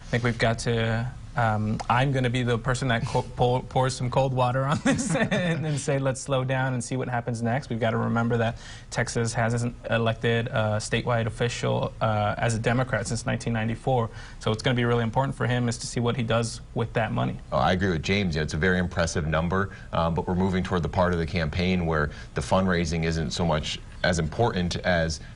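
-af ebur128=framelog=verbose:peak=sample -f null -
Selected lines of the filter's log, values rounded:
Integrated loudness:
  I:         -25.7 LUFS
  Threshold: -35.8 LUFS
Loudness range:
  LRA:         1.6 LU
  Threshold: -45.8 LUFS
  LRA low:   -26.5 LUFS
  LRA high:  -24.9 LUFS
Sample peak:
  Peak:       -8.9 dBFS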